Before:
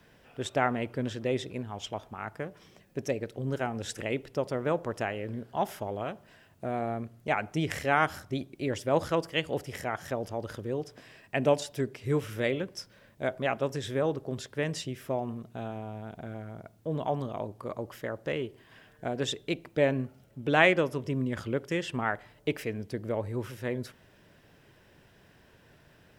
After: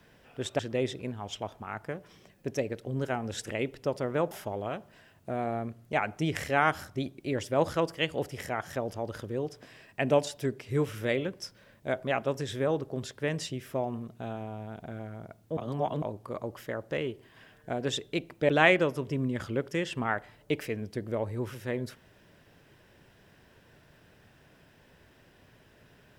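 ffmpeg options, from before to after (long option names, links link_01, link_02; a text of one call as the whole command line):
ffmpeg -i in.wav -filter_complex "[0:a]asplit=6[link_01][link_02][link_03][link_04][link_05][link_06];[link_01]atrim=end=0.592[link_07];[link_02]atrim=start=1.098:end=4.822[link_08];[link_03]atrim=start=5.658:end=16.922[link_09];[link_04]atrim=start=16.918:end=17.372,asetpts=PTS-STARTPTS,areverse[link_10];[link_05]atrim=start=17.368:end=19.842[link_11];[link_06]atrim=start=20.458[link_12];[link_07][link_08]acrossfade=duration=0.004:curve1=hsin:curve2=hsin[link_13];[link_13][link_09]acrossfade=duration=0.004:curve1=hsin:curve2=hsin[link_14];[link_14][link_10]acrossfade=duration=0.004:curve1=hsin:curve2=hsin[link_15];[link_15][link_11]acrossfade=duration=0.004:curve1=hsin:curve2=hsin[link_16];[link_16][link_12]acrossfade=duration=0.004:curve1=hsin:curve2=hsin" out.wav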